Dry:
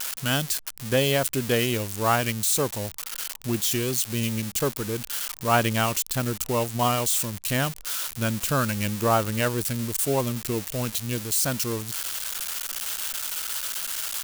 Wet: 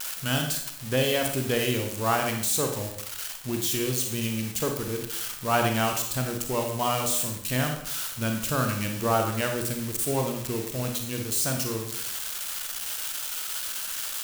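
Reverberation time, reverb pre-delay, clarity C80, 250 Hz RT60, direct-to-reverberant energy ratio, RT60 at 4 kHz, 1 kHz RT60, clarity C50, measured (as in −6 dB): 0.70 s, 30 ms, 9.0 dB, 0.75 s, 3.0 dB, 0.60 s, 0.65 s, 5.5 dB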